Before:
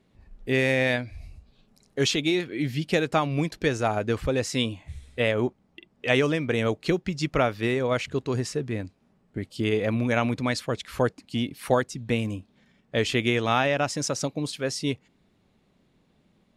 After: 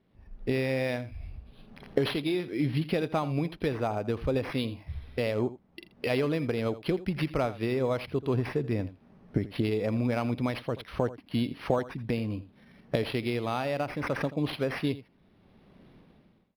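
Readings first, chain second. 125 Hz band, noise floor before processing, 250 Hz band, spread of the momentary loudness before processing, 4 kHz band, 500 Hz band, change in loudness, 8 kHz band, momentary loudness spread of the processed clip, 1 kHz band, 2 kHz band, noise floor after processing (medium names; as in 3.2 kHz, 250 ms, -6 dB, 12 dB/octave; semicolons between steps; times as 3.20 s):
-2.5 dB, -66 dBFS, -2.5 dB, 10 LU, -8.5 dB, -4.0 dB, -4.5 dB, under -15 dB, 7 LU, -6.0 dB, -8.5 dB, -63 dBFS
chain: fade out at the end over 3.70 s; recorder AGC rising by 21 dB/s; steep low-pass 8.1 kHz; dynamic bell 1.7 kHz, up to -6 dB, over -42 dBFS, Q 2; delay 83 ms -16 dB; decimation joined by straight lines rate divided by 6×; trim -5 dB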